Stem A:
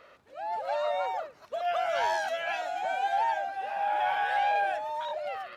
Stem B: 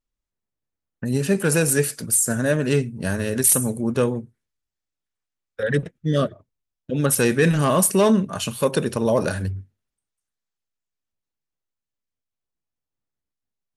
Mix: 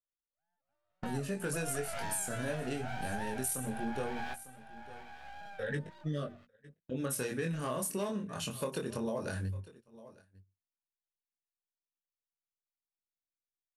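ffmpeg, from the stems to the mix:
-filter_complex "[0:a]aeval=exprs='max(val(0),0)':c=same,volume=0.562,asplit=2[s0][s1];[s1]volume=0.211[s2];[1:a]bandreject=f=60:t=h:w=6,bandreject=f=120:t=h:w=6,bandreject=f=180:t=h:w=6,bandreject=f=240:t=h:w=6,flanger=delay=19:depth=5.6:speed=0.19,volume=0.422,asplit=3[s3][s4][s5];[s4]volume=0.0668[s6];[s5]apad=whole_len=245525[s7];[s0][s7]sidechaingate=range=0.0224:threshold=0.00316:ratio=16:detection=peak[s8];[s2][s6]amix=inputs=2:normalize=0,aecho=0:1:901:1[s9];[s8][s3][s9]amix=inputs=3:normalize=0,agate=range=0.224:threshold=0.00158:ratio=16:detection=peak,acompressor=threshold=0.0251:ratio=6"

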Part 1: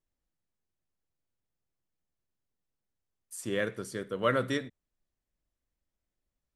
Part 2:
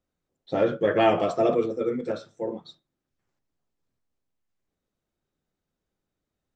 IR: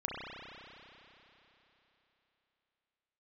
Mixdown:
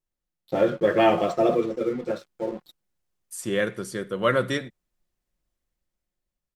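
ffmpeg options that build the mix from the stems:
-filter_complex "[0:a]dynaudnorm=f=340:g=7:m=2.37,volume=0.794[s0];[1:a]aeval=exprs='sgn(val(0))*max(abs(val(0))-0.00501,0)':c=same,volume=1.12[s1];[s0][s1]amix=inputs=2:normalize=0,aecho=1:1:5.6:0.31"

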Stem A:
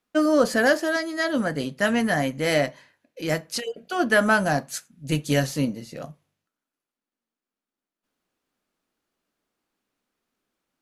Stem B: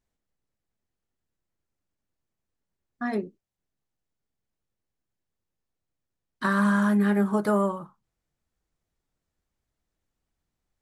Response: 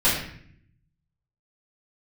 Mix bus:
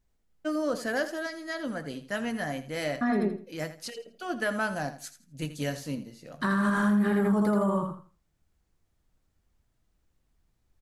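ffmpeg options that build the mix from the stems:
-filter_complex "[0:a]adelay=300,volume=0.316,asplit=2[s0][s1];[s1]volume=0.224[s2];[1:a]lowshelf=f=160:g=9,volume=1.26,asplit=2[s3][s4];[s4]volume=0.708[s5];[s2][s5]amix=inputs=2:normalize=0,aecho=0:1:82|164|246|328:1|0.24|0.0576|0.0138[s6];[s0][s3][s6]amix=inputs=3:normalize=0,alimiter=limit=0.126:level=0:latency=1:release=81"

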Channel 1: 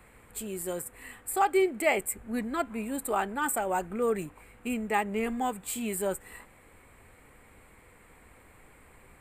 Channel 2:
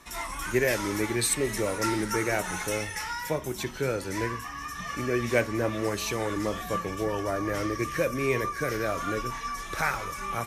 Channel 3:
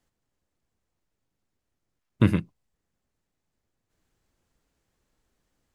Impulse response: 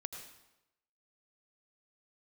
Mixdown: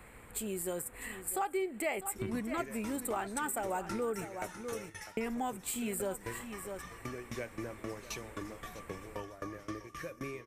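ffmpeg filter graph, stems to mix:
-filter_complex "[0:a]volume=1.26,asplit=3[s0][s1][s2];[s0]atrim=end=4.25,asetpts=PTS-STARTPTS,afade=t=out:st=4.246:d=0.004:c=hsin[s3];[s1]atrim=start=4.25:end=5.17,asetpts=PTS-STARTPTS,volume=0[s4];[s2]atrim=start=5.17,asetpts=PTS-STARTPTS,afade=t=in:d=0.004:c=hsin[s5];[s3][s4][s5]concat=n=3:v=0:a=1,asplit=2[s6][s7];[s7]volume=0.188[s8];[1:a]aeval=exprs='val(0)*pow(10,-23*if(lt(mod(3.8*n/s,1),2*abs(3.8)/1000),1-mod(3.8*n/s,1)/(2*abs(3.8)/1000),(mod(3.8*n/s,1)-2*abs(3.8)/1000)/(1-2*abs(3.8)/1000))/20)':c=same,adelay=2050,volume=0.501,asplit=2[s9][s10];[s10]volume=0.141[s11];[2:a]volume=0.2[s12];[s8][s11]amix=inputs=2:normalize=0,aecho=0:1:650:1[s13];[s6][s9][s12][s13]amix=inputs=4:normalize=0,acompressor=threshold=0.0178:ratio=3"

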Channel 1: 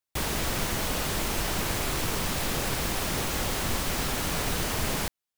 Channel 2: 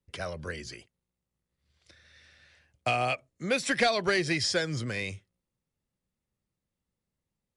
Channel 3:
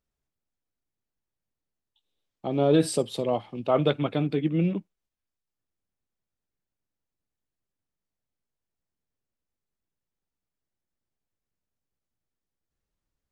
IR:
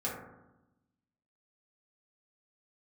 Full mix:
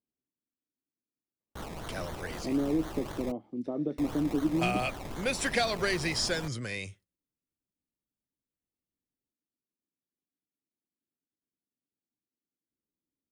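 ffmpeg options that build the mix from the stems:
-filter_complex "[0:a]acrusher=samples=24:mix=1:aa=0.000001:lfo=1:lforange=14.4:lforate=3.9,adelay=1400,volume=0.266,asplit=3[s0][s1][s2];[s0]atrim=end=3.32,asetpts=PTS-STARTPTS,afade=t=out:st=3.316:d=0.004:c=hsin[s3];[s1]atrim=start=3.32:end=3.98,asetpts=PTS-STARTPTS,volume=0[s4];[s2]atrim=start=3.98,asetpts=PTS-STARTPTS,afade=t=in:d=0.004:c=hsin[s5];[s3][s4][s5]concat=n=3:v=0:a=1[s6];[1:a]agate=range=0.282:threshold=0.00178:ratio=16:detection=peak,highshelf=f=9300:g=10.5,adelay=1750,volume=0.668[s7];[2:a]acompressor=threshold=0.0708:ratio=6,bandpass=f=280:t=q:w=2.8:csg=0,volume=1.41[s8];[s6][s7][s8]amix=inputs=3:normalize=0"

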